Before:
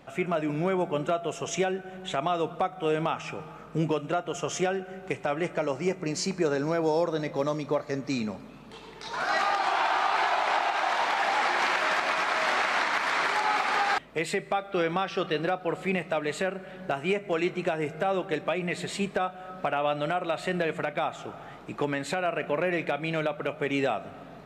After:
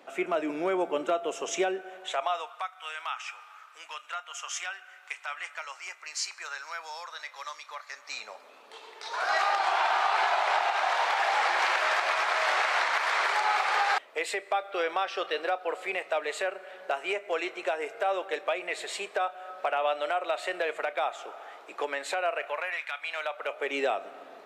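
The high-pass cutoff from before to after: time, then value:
high-pass 24 dB/octave
1.69 s 290 Hz
2.69 s 1.1 kHz
7.88 s 1.1 kHz
8.57 s 460 Hz
22.27 s 460 Hz
22.91 s 1.1 kHz
23.80 s 350 Hz

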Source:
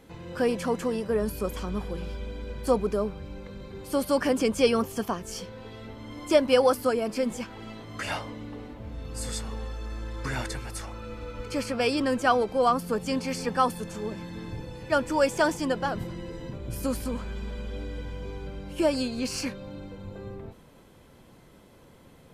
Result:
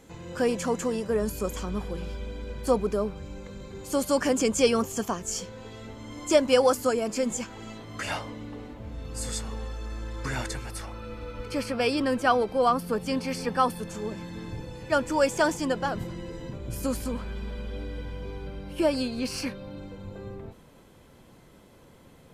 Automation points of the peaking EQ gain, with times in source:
peaking EQ 7 kHz 0.37 oct
+11.5 dB
from 1.61 s +4.5 dB
from 3.16 s +13.5 dB
from 7.78 s +4 dB
from 10.70 s -4.5 dB
from 13.89 s +4 dB
from 17.12 s -6 dB
from 19.77 s +2 dB

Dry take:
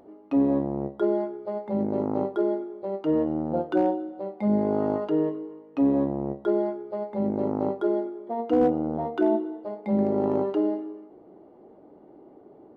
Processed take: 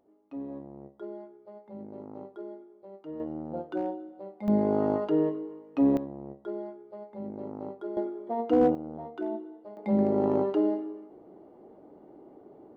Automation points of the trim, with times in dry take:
-16.5 dB
from 3.20 s -9 dB
from 4.48 s -1 dB
from 5.97 s -12 dB
from 7.97 s -1 dB
from 8.75 s -11 dB
from 9.77 s -1 dB

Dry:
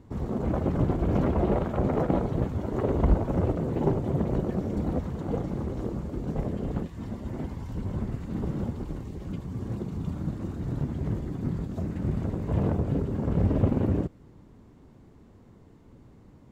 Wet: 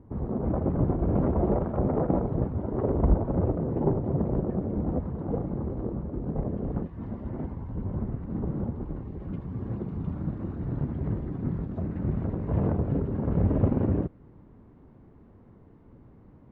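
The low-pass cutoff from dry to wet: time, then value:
6.51 s 1.1 kHz
7.23 s 1.6 kHz
7.61 s 1.2 kHz
8.72 s 1.2 kHz
9.44 s 1.8 kHz

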